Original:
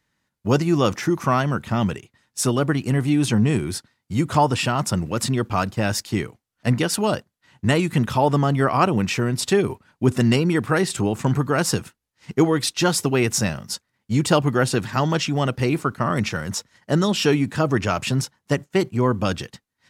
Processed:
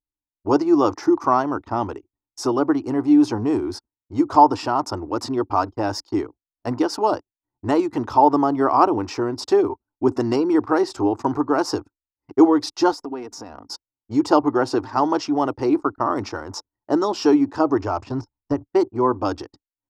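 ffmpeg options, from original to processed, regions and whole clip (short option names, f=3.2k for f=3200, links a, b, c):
-filter_complex "[0:a]asettb=1/sr,asplit=3[a][b][c];[a]atrim=end=12.924[d];[b]atrim=start=12.92:end=13.68,asetpts=PTS-STARTPTS,afade=t=in:d=0.004:c=qsin,afade=t=out:st=0.756:d=0.004:c=qsin,aecho=1:1:4.2:0.49,atrim=end_sample=33516,acompressor=threshold=-27dB:ratio=10:attack=3.2:release=140:knee=1:detection=peak,asoftclip=type=hard:threshold=-23.5dB[e];[c]atrim=start=13.676[f];[d][e]acrossfade=d=0.004:c1=hsin:c2=qsin[g];[g][f]acrossfade=d=0.004:c1=qsin:c2=hsin,asettb=1/sr,asplit=3[h][i][j];[h]atrim=end=17.694[k];[i]atrim=start=17.69:end=18.7,asetpts=PTS-STARTPTS,afade=t=in:d=0.004:c=qsin,afade=t=out:st=1.006:d=0.004:c=qsin,deesser=0.85,lowpass=f=9.6k:w=0.5412,lowpass=f=9.6k:w=1.3066,asubboost=boost=11.5:cutoff=170[l];[j]atrim=start=18.696[m];[k][l]acrossfade=d=0.004:c1=hsin:c2=qsin[n];[n][m]acrossfade=d=0.004:c1=qsin:c2=hsin,anlmdn=2.51,firequalizer=gain_entry='entry(100,0);entry(170,-18);entry(290,13);entry(520,4);entry(870,14);entry(1700,-3);entry(2400,-7);entry(3400,-7);entry(5000,5);entry(8300,-11)':delay=0.05:min_phase=1,volume=-6dB"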